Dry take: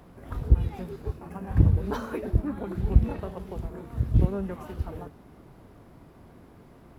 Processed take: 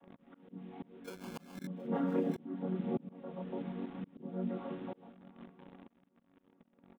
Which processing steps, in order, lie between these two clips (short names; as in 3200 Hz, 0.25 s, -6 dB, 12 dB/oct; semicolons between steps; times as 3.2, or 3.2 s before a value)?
chord vocoder major triad, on F#3; dynamic EQ 600 Hz, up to +3 dB, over -43 dBFS, Q 1.4; chorus voices 4, 0.64 Hz, delay 28 ms, depth 4.2 ms; in parallel at -3.5 dB: requantised 8-bit, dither none; on the sum: downsampling 8000 Hz; 1.04–1.67 sample-rate reducer 1900 Hz, jitter 0%; on a send: echo 0.72 s -21 dB; on the sum: auto swell 0.505 s; gain -3 dB